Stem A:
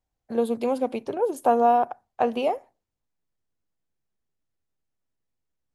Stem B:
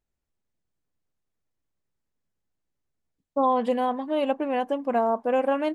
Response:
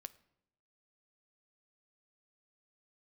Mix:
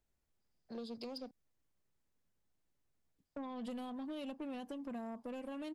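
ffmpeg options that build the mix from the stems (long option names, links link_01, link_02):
-filter_complex "[0:a]lowpass=frequency=4900:width_type=q:width=16,adelay=400,volume=-13.5dB,asplit=3[link_01][link_02][link_03];[link_01]atrim=end=1.31,asetpts=PTS-STARTPTS,afade=type=out:start_time=1.306:duration=0.004:curve=hsin[link_04];[link_02]atrim=start=1.31:end=3.25,asetpts=PTS-STARTPTS,volume=0[link_05];[link_03]atrim=start=3.25,asetpts=PTS-STARTPTS,afade=type=in:duration=0.004:curve=hsin[link_06];[link_04][link_05][link_06]concat=n=3:v=0:a=1[link_07];[1:a]acompressor=threshold=-29dB:ratio=3,volume=0dB[link_08];[link_07][link_08]amix=inputs=2:normalize=0,acrossover=split=240|3000[link_09][link_10][link_11];[link_10]acompressor=threshold=-44dB:ratio=8[link_12];[link_09][link_12][link_11]amix=inputs=3:normalize=0,asoftclip=type=tanh:threshold=-37.5dB"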